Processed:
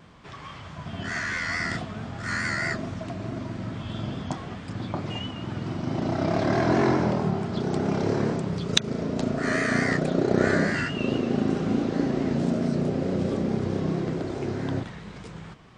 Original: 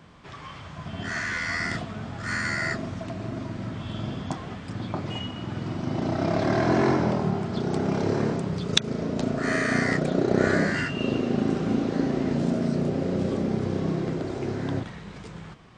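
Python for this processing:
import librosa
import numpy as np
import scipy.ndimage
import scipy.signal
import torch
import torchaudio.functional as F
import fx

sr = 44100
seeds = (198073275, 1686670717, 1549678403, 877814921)

y = fx.vibrato(x, sr, rate_hz=4.6, depth_cents=50.0)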